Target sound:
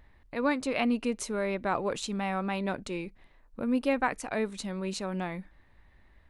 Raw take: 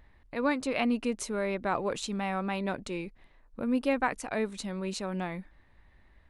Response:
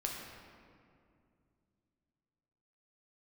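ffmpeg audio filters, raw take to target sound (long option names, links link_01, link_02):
-filter_complex "[0:a]asplit=2[link_01][link_02];[1:a]atrim=start_sample=2205,atrim=end_sample=3969,asetrate=57330,aresample=44100[link_03];[link_02][link_03]afir=irnorm=-1:irlink=0,volume=-22dB[link_04];[link_01][link_04]amix=inputs=2:normalize=0"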